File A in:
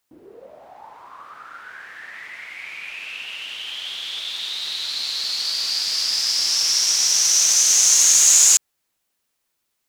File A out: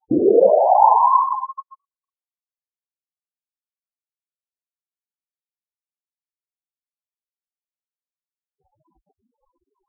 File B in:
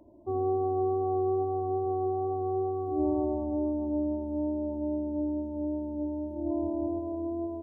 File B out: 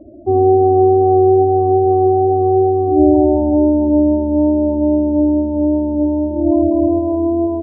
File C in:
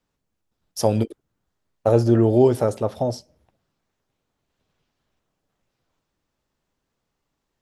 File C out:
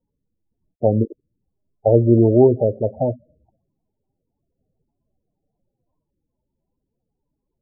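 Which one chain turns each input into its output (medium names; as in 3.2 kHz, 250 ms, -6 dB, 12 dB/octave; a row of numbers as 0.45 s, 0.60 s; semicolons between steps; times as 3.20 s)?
loudest bins only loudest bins 16; brick-wall FIR low-pass 1.1 kHz; peak normalisation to -1.5 dBFS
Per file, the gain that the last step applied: +31.0 dB, +17.0 dB, +3.0 dB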